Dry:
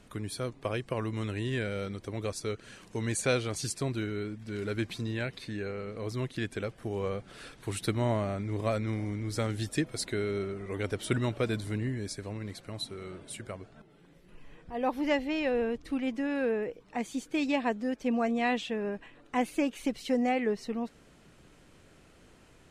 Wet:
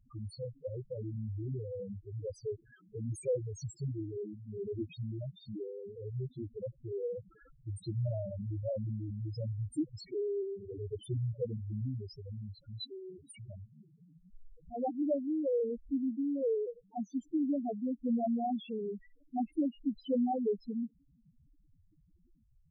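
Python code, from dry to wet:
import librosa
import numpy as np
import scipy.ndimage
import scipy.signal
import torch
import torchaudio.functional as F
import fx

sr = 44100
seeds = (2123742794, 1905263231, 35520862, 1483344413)

y = fx.peak_eq(x, sr, hz=140.0, db=5.0, octaves=1.3, at=(13.43, 14.97))
y = fx.spec_topn(y, sr, count=2)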